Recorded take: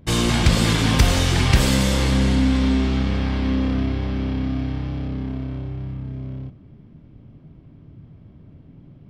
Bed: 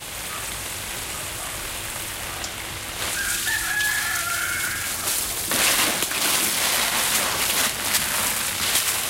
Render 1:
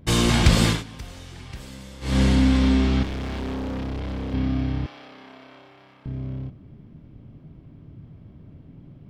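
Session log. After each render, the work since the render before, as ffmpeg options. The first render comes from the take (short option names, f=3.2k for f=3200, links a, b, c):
-filter_complex "[0:a]asettb=1/sr,asplit=3[a][b][c];[a]atrim=end=3.034[d];[b]atrim=start=3.03:end=4.34,asetpts=PTS-STARTPTS,afade=t=in:d=0.004:c=qsin,afade=t=out:st=1.306:d=0.004:c=qsin,volume=27.5dB,asoftclip=hard,volume=-27.5dB[e];[c]atrim=start=4.336[f];[d][e]acrossfade=d=0.004:c1=hsin:c2=qsin[g];[g][f]acrossfade=d=0.004:c1=qsin:c2=hsin,asettb=1/sr,asplit=3[h][i][j];[h]atrim=end=4.864[k];[i]atrim=start=4.86:end=6.06,asetpts=PTS-STARTPTS,afade=t=in:d=0.004:c=qsin,afade=t=out:st=1.196:d=0.004:c=qsin,highpass=780[l];[j]atrim=start=6.056[m];[k][l]acrossfade=d=0.004:c1=hsin:c2=qsin[n];[n][m]acrossfade=d=0.004:c1=qsin:c2=hsin,asplit=3[o][p][q];[o]atrim=end=0.84,asetpts=PTS-STARTPTS,afade=t=out:st=0.65:d=0.19:silence=0.0794328[r];[p]atrim=start=0.84:end=2.01,asetpts=PTS-STARTPTS,volume=-22dB[s];[q]atrim=start=2.01,asetpts=PTS-STARTPTS,afade=t=in:d=0.19:silence=0.0794328[t];[r][s][t]concat=n=3:v=0:a=1"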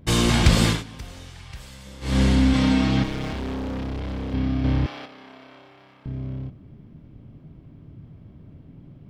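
-filter_complex "[0:a]asettb=1/sr,asplit=3[a][b][c];[a]atrim=end=1.304[d];[b]atrim=start=1.3:end=1.86,asetpts=PTS-STARTPTS,afade=t=in:d=0.004:c=qsin,afade=t=out:st=0.556:d=0.004:c=qsin,equalizer=f=290:w=1:g=-11[e];[c]atrim=start=1.856[f];[d][e]acrossfade=d=0.004:c1=hsin:c2=qsin[g];[g][f]acrossfade=d=0.004:c1=qsin:c2=hsin,asettb=1/sr,asplit=3[h][i][j];[h]atrim=end=2.534[k];[i]atrim=start=2.53:end=3.33,asetpts=PTS-STARTPTS,afade=t=in:d=0.004:c=qsin,afade=t=out:st=0.796:d=0.004:c=qsin,aecho=1:1:6.4:0.95,atrim=end_sample=35280[l];[j]atrim=start=3.326[m];[k][l]acrossfade=d=0.004:c1=hsin:c2=qsin[n];[n][m]acrossfade=d=0.004:c1=qsin:c2=hsin,asettb=1/sr,asplit=3[o][p][q];[o]atrim=end=4.644[r];[p]atrim=start=4.64:end=5.06,asetpts=PTS-STARTPTS,afade=t=in:d=0.004:c=qsin,afade=t=out:st=0.416:d=0.004:c=qsin,aeval=exprs='0.178*sin(PI/2*1.41*val(0)/0.178)':c=same[s];[q]atrim=start=5.056[t];[r][s]acrossfade=d=0.004:c1=hsin:c2=qsin[u];[u][t]acrossfade=d=0.004:c1=qsin:c2=hsin"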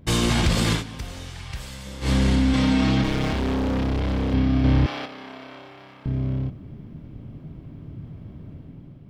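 -af "dynaudnorm=f=170:g=7:m=6dB,alimiter=limit=-12dB:level=0:latency=1:release=36"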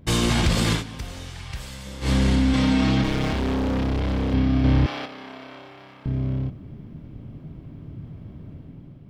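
-af anull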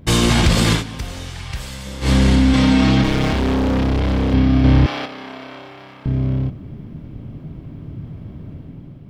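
-af "volume=6dB"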